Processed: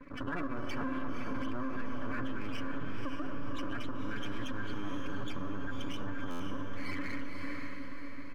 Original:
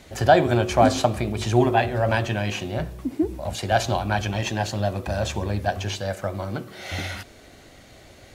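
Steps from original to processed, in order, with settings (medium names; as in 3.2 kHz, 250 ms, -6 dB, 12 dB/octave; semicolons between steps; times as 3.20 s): vowel filter i; bass shelf 150 Hz +12 dB; gate with hold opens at -54 dBFS; loudest bins only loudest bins 16; half-wave rectifier; comb 7 ms, depth 40%; on a send at -19 dB: reverberation RT60 0.50 s, pre-delay 50 ms; on the sum: compression 3:1, threshold -41 dBFS, peak gain reduction 17.5 dB; high-order bell 1.3 kHz +16 dB 1 oct; echo that smears into a reverb 533 ms, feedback 48%, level -4.5 dB; peak limiter -34.5 dBFS, peak gain reduction 9 dB; buffer glitch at 6.30 s, samples 512, times 8; trim +9.5 dB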